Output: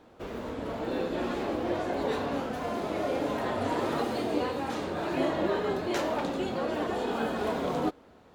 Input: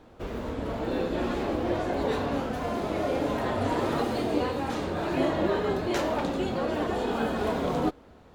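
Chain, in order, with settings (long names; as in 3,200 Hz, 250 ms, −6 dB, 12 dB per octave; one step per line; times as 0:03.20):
low-shelf EQ 93 Hz −11.5 dB
level −1.5 dB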